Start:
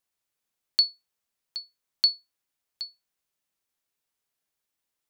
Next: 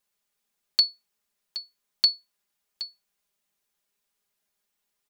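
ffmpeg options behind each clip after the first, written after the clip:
-af "aecho=1:1:4.9:0.98,volume=1.12"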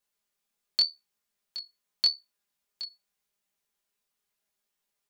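-af "flanger=delay=17.5:depth=6.7:speed=0.85"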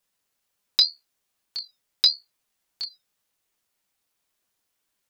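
-af "aeval=exprs='val(0)*sin(2*PI*580*n/s+580*0.8/1.6*sin(2*PI*1.6*n/s))':c=same,volume=2.66"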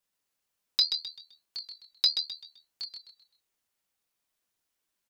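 -filter_complex "[0:a]asplit=5[s0][s1][s2][s3][s4];[s1]adelay=129,afreqshift=-73,volume=0.447[s5];[s2]adelay=258,afreqshift=-146,volume=0.151[s6];[s3]adelay=387,afreqshift=-219,volume=0.0519[s7];[s4]adelay=516,afreqshift=-292,volume=0.0176[s8];[s0][s5][s6][s7][s8]amix=inputs=5:normalize=0,volume=0.501"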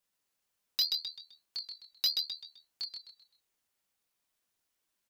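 -af "asoftclip=type=tanh:threshold=0.075"

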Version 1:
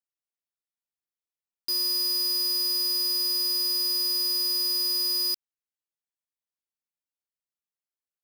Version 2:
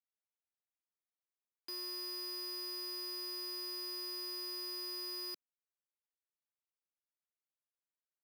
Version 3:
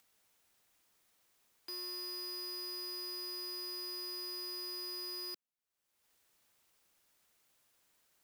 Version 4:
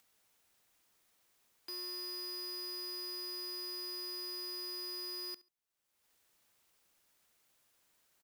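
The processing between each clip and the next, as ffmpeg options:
-filter_complex "[0:a]acrossover=split=210 2900:gain=0.112 1 0.2[s0][s1][s2];[s0][s1][s2]amix=inputs=3:normalize=0,volume=0.531"
-af "acompressor=mode=upward:threshold=0.002:ratio=2.5"
-af "aecho=1:1:70|140:0.1|0.021"

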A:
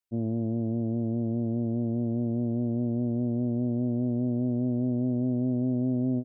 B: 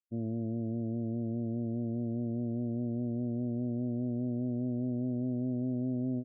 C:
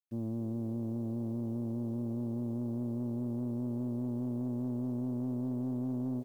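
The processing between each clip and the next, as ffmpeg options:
-filter_complex "[0:a]afftdn=nr=33:nf=-43,asplit=2[s0][s1];[s1]alimiter=level_in=1.88:limit=0.0631:level=0:latency=1:release=46,volume=0.531,volume=0.841[s2];[s0][s2]amix=inputs=2:normalize=0,volume=0.398"
-filter_complex "[0:a]acrusher=bits=10:mix=0:aa=0.000001,asplit=5[s0][s1][s2][s3][s4];[s1]adelay=266,afreqshift=150,volume=0.0668[s5];[s2]adelay=532,afreqshift=300,volume=0.038[s6];[s3]adelay=798,afreqshift=450,volume=0.0216[s7];[s4]adelay=1064,afreqshift=600,volume=0.0124[s8];[s0][s5][s6][s7][s8]amix=inputs=5:normalize=0,asoftclip=type=tanh:threshold=0.0422"

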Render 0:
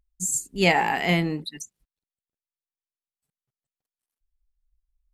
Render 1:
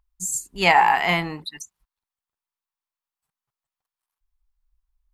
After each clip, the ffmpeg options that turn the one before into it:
-af "equalizer=f=125:t=o:w=1:g=-5,equalizer=f=250:t=o:w=1:g=-8,equalizer=f=500:t=o:w=1:g=-6,equalizer=f=1000:t=o:w=1:g=11,equalizer=f=8000:t=o:w=1:g=-3,volume=1.26"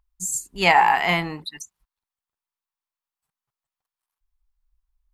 -af anull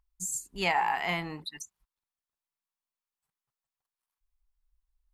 -af "acompressor=threshold=0.0282:ratio=1.5,volume=0.596"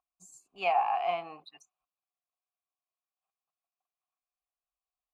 -filter_complex "[0:a]asplit=3[s0][s1][s2];[s0]bandpass=f=730:t=q:w=8,volume=1[s3];[s1]bandpass=f=1090:t=q:w=8,volume=0.501[s4];[s2]bandpass=f=2440:t=q:w=8,volume=0.355[s5];[s3][s4][s5]amix=inputs=3:normalize=0,volume=2.66"

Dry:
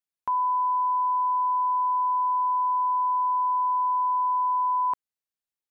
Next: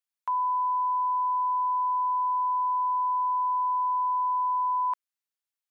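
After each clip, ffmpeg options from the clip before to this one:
-af "highpass=890"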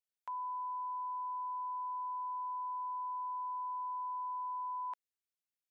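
-af "equalizer=f=1100:t=o:w=0.63:g=-8,volume=0.473"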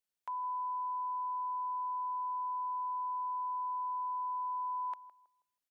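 -filter_complex "[0:a]asplit=2[s0][s1];[s1]adelay=161,lowpass=f=830:p=1,volume=0.224,asplit=2[s2][s3];[s3]adelay=161,lowpass=f=830:p=1,volume=0.39,asplit=2[s4][s5];[s5]adelay=161,lowpass=f=830:p=1,volume=0.39,asplit=2[s6][s7];[s7]adelay=161,lowpass=f=830:p=1,volume=0.39[s8];[s0][s2][s4][s6][s8]amix=inputs=5:normalize=0,volume=1.26"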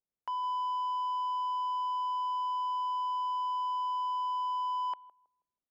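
-af "adynamicsmooth=sensitivity=7:basefreq=740,volume=1.68"

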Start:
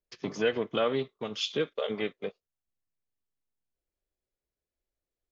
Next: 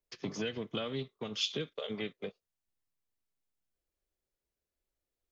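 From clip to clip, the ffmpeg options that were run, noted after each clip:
-filter_complex "[0:a]acrossover=split=220|3000[s0][s1][s2];[s1]acompressor=threshold=0.0126:ratio=6[s3];[s0][s3][s2]amix=inputs=3:normalize=0"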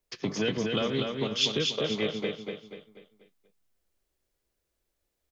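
-af "aecho=1:1:243|486|729|972|1215:0.631|0.259|0.106|0.0435|0.0178,volume=2.24"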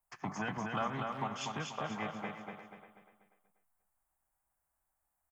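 -filter_complex "[0:a]firequalizer=gain_entry='entry(180,0);entry(450,-12);entry(770,14);entry(3800,-17);entry(8200,7)':delay=0.05:min_phase=1,asplit=2[s0][s1];[s1]adelay=350,highpass=300,lowpass=3400,asoftclip=type=hard:threshold=0.0668,volume=0.282[s2];[s0][s2]amix=inputs=2:normalize=0,volume=0.447"

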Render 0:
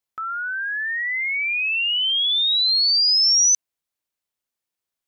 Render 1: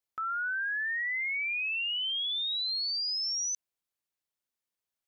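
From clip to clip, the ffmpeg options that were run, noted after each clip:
-af "alimiter=limit=0.0631:level=0:latency=1:release=26,volume=0.562"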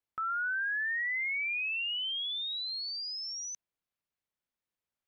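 -af "bass=f=250:g=4,treble=f=4000:g=-9"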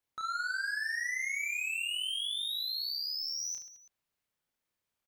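-filter_complex "[0:a]asoftclip=type=tanh:threshold=0.0119,asplit=2[s0][s1];[s1]aecho=0:1:30|72|130.8|213.1|328.4:0.631|0.398|0.251|0.158|0.1[s2];[s0][s2]amix=inputs=2:normalize=0,volume=1.41"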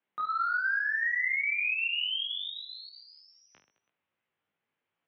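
-af "flanger=delay=16.5:depth=2.5:speed=2.6,highpass=f=190:t=q:w=0.5412,highpass=f=190:t=q:w=1.307,lowpass=f=3200:t=q:w=0.5176,lowpass=f=3200:t=q:w=0.7071,lowpass=f=3200:t=q:w=1.932,afreqshift=-70,volume=2.66"

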